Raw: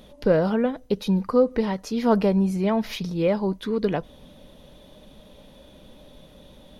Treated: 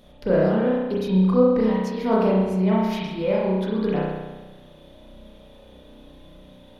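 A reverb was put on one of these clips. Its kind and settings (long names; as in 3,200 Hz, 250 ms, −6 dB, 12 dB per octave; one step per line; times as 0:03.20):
spring reverb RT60 1.2 s, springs 32 ms, chirp 35 ms, DRR −5.5 dB
level −5.5 dB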